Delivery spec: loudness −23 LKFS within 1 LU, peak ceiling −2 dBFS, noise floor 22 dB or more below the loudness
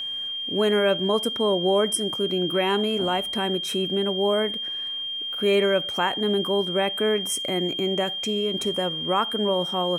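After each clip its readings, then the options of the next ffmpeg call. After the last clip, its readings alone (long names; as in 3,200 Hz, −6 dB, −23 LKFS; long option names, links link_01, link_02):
interfering tone 3,200 Hz; level of the tone −28 dBFS; integrated loudness −23.5 LKFS; sample peak −9.5 dBFS; target loudness −23.0 LKFS
→ -af "bandreject=frequency=3200:width=30"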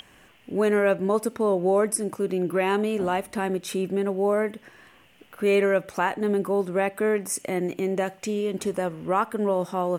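interfering tone none found; integrated loudness −25.0 LKFS; sample peak −10.5 dBFS; target loudness −23.0 LKFS
→ -af "volume=2dB"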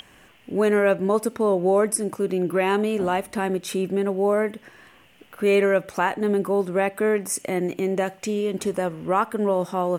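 integrated loudness −23.0 LKFS; sample peak −8.5 dBFS; background noise floor −53 dBFS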